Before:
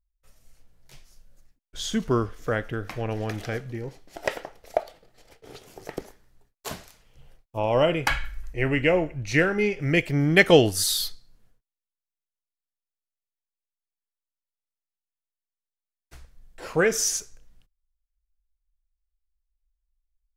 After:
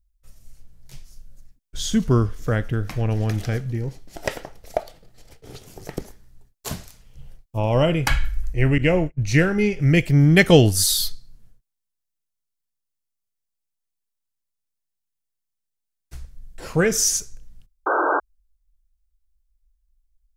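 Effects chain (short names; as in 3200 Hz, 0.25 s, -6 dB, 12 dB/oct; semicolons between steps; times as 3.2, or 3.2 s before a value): tone controls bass +11 dB, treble +6 dB; 8.78–9.23 gate -22 dBFS, range -33 dB; 17.86–18.2 painted sound noise 280–1600 Hz -20 dBFS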